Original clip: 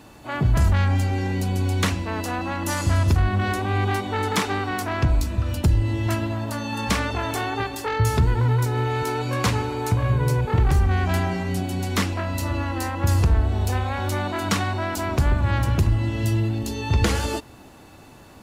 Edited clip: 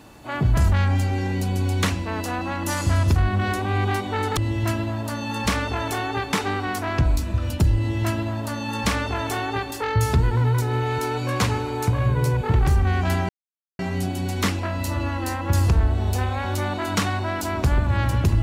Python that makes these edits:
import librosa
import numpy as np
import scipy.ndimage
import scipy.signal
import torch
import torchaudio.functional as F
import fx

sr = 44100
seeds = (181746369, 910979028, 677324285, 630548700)

y = fx.edit(x, sr, fx.duplicate(start_s=5.8, length_s=1.96, to_s=4.37),
    fx.insert_silence(at_s=11.33, length_s=0.5), tone=tone)